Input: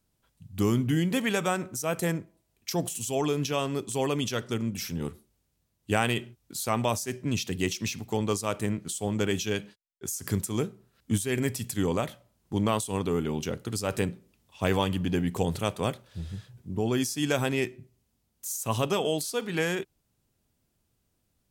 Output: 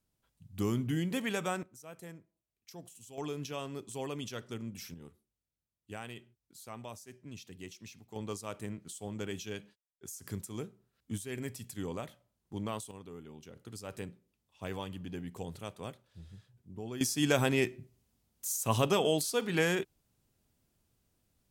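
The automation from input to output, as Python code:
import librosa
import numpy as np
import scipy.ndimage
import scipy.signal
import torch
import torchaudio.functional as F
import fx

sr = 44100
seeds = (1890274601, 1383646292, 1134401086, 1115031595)

y = fx.gain(x, sr, db=fx.steps((0.0, -7.0), (1.63, -20.0), (3.18, -11.0), (4.94, -18.5), (8.16, -11.5), (12.91, -20.0), (13.56, -14.0), (17.01, -1.0)))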